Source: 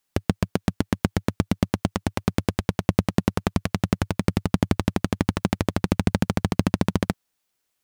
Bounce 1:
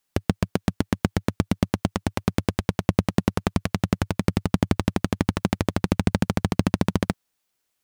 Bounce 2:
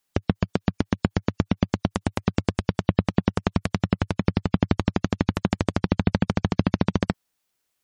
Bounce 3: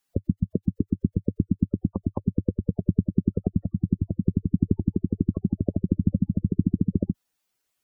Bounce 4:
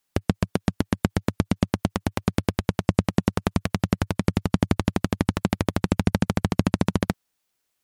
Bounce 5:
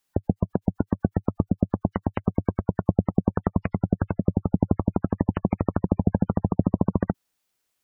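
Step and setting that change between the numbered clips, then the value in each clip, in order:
spectral gate, under each frame's peak: -60, -35, -10, -45, -20 dB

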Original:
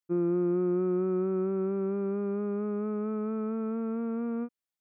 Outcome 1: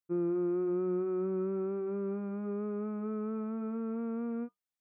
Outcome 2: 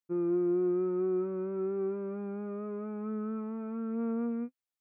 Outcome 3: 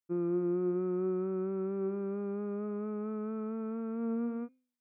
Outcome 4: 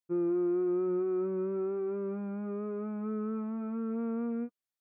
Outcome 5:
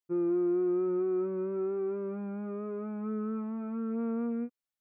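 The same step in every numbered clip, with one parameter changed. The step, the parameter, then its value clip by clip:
flange, regen: -67, +36, +89, -20, +4%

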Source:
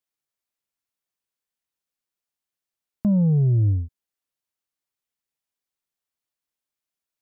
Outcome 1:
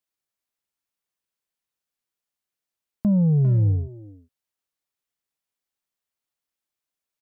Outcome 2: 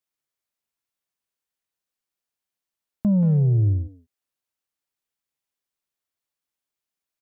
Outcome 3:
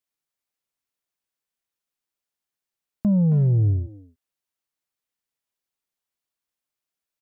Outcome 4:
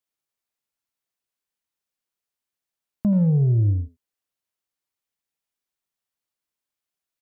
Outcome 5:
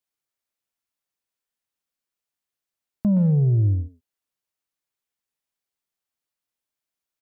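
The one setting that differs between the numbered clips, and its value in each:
speakerphone echo, time: 400, 180, 270, 80, 120 ms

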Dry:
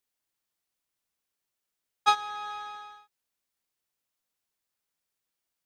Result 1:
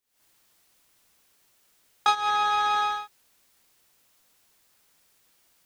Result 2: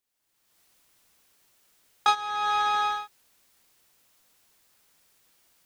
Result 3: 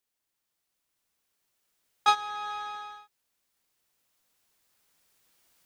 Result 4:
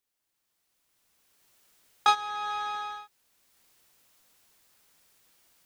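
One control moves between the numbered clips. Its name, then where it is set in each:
recorder AGC, rising by: 90, 33, 5.2, 13 dB/s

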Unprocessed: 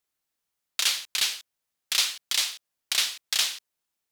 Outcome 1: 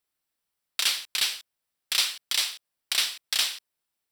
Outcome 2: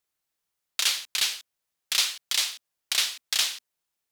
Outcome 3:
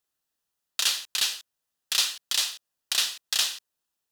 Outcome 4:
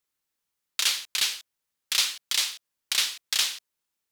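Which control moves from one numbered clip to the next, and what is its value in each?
notch, frequency: 6600, 250, 2200, 690 Hz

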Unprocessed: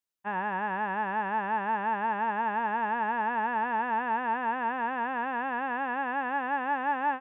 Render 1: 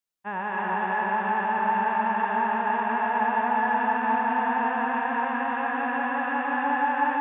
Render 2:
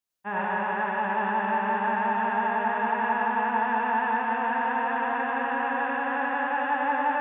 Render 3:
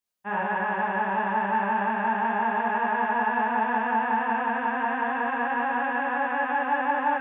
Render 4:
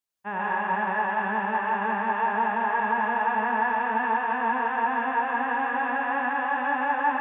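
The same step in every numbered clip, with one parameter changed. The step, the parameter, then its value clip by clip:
non-linear reverb, gate: 340, 130, 80, 190 ms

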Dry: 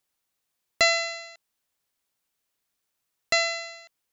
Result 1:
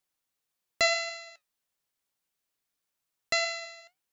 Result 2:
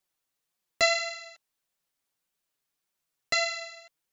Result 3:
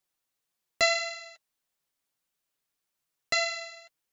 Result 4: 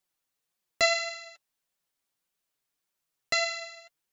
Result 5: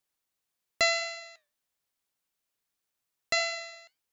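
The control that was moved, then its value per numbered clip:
flange, regen: +75, -2, -24, +23, -85%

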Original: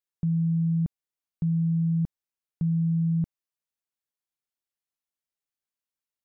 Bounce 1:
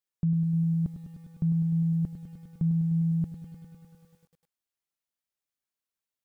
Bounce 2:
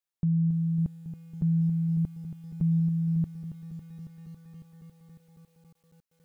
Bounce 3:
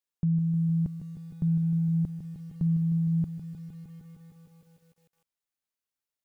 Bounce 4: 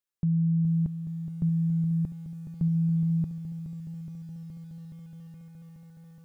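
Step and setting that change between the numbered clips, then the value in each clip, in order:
lo-fi delay, time: 0.101, 0.276, 0.154, 0.42 s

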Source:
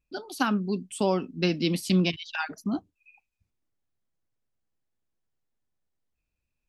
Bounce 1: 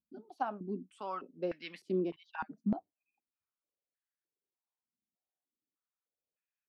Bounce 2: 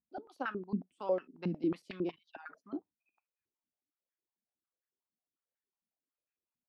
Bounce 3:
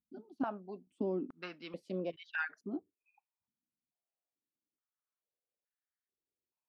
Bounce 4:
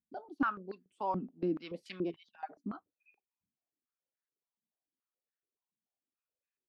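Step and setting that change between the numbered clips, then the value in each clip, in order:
stepped band-pass, rate: 3.3, 11, 2.3, 7 Hz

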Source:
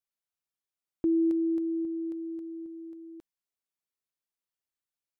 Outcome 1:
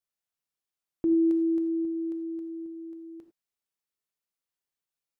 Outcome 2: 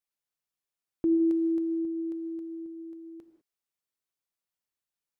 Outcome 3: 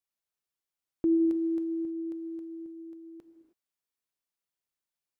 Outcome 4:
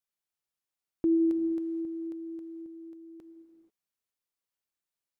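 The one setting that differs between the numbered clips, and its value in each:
non-linear reverb, gate: 0.12, 0.22, 0.34, 0.51 s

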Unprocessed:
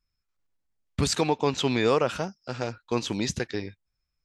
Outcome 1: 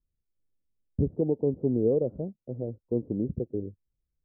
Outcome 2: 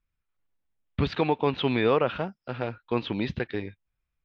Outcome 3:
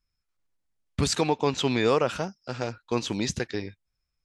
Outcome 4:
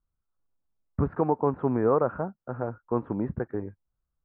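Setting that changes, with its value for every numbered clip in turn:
steep low-pass, frequency: 530, 3600, 12000, 1400 Hz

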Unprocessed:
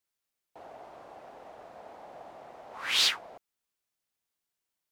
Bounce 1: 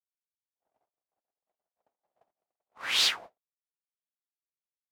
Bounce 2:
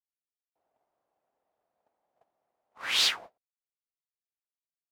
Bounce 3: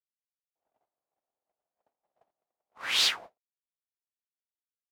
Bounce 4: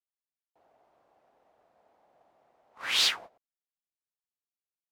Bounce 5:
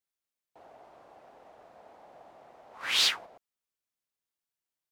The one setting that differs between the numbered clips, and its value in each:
gate, range: -58, -33, -45, -19, -6 dB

